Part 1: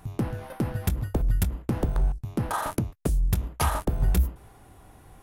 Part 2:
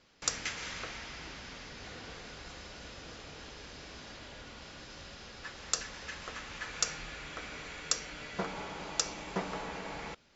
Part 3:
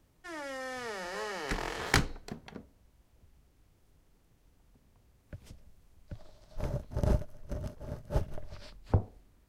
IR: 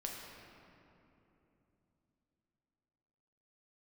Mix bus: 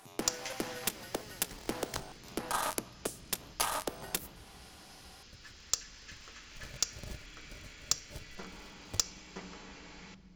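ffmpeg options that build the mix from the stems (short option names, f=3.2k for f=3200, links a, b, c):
-filter_complex "[0:a]highpass=100,volume=3dB,asplit=2[a][b];[b]volume=-21dB[c];[1:a]asubboost=boost=8.5:cutoff=210,bandreject=f=3.7k:w=23,volume=-6dB,asplit=2[d][e];[e]volume=-10.5dB[f];[2:a]acompressor=threshold=-40dB:ratio=1.5,acrusher=bits=2:mode=log:mix=0:aa=0.000001,equalizer=f=1.9k:w=0.61:g=-8,volume=-5.5dB[g];[a][d]amix=inputs=2:normalize=0,highpass=320,alimiter=limit=-19.5dB:level=0:latency=1:release=399,volume=0dB[h];[3:a]atrim=start_sample=2205[i];[c][f]amix=inputs=2:normalize=0[j];[j][i]afir=irnorm=-1:irlink=0[k];[g][h][k]amix=inputs=3:normalize=0,equalizer=f=5.6k:w=0.48:g=8.5,aeval=exprs='0.335*(cos(1*acos(clip(val(0)/0.335,-1,1)))-cos(1*PI/2))+0.0211*(cos(4*acos(clip(val(0)/0.335,-1,1)))-cos(4*PI/2))+0.0266*(cos(7*acos(clip(val(0)/0.335,-1,1)))-cos(7*PI/2))':c=same"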